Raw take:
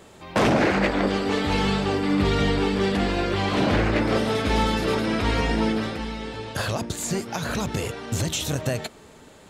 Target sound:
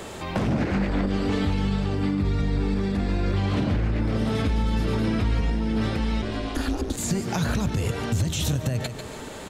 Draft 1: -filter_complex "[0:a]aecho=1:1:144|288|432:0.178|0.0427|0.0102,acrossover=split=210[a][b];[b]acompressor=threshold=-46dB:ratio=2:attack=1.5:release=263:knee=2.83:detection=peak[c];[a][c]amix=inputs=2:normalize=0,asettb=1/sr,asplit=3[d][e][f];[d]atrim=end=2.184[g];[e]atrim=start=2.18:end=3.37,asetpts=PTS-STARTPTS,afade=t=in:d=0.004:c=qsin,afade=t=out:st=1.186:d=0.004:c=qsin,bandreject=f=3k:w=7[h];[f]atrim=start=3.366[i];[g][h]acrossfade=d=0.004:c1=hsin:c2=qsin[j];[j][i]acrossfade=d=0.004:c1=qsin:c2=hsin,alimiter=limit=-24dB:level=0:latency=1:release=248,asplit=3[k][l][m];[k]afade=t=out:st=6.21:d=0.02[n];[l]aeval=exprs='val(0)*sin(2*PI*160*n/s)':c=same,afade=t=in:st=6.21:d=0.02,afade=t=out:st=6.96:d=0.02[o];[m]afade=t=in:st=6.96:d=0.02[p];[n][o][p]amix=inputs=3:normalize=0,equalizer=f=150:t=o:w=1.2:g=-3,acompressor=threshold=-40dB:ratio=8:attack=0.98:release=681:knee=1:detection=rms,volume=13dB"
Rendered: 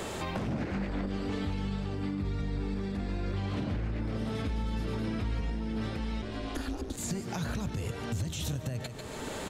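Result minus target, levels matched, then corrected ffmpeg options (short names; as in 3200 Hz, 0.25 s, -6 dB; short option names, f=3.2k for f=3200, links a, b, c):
compressor: peak gain reduction +9 dB
-filter_complex "[0:a]aecho=1:1:144|288|432:0.178|0.0427|0.0102,acrossover=split=210[a][b];[b]acompressor=threshold=-46dB:ratio=2:attack=1.5:release=263:knee=2.83:detection=peak[c];[a][c]amix=inputs=2:normalize=0,asettb=1/sr,asplit=3[d][e][f];[d]atrim=end=2.184[g];[e]atrim=start=2.18:end=3.37,asetpts=PTS-STARTPTS,afade=t=in:d=0.004:c=qsin,afade=t=out:st=1.186:d=0.004:c=qsin,bandreject=f=3k:w=7[h];[f]atrim=start=3.366[i];[g][h]acrossfade=d=0.004:c1=hsin:c2=qsin[j];[j][i]acrossfade=d=0.004:c1=qsin:c2=hsin,alimiter=limit=-24dB:level=0:latency=1:release=248,asplit=3[k][l][m];[k]afade=t=out:st=6.21:d=0.02[n];[l]aeval=exprs='val(0)*sin(2*PI*160*n/s)':c=same,afade=t=in:st=6.21:d=0.02,afade=t=out:st=6.96:d=0.02[o];[m]afade=t=in:st=6.96:d=0.02[p];[n][o][p]amix=inputs=3:normalize=0,equalizer=f=150:t=o:w=1.2:g=-3,acompressor=threshold=-29.5dB:ratio=8:attack=0.98:release=681:knee=1:detection=rms,volume=13dB"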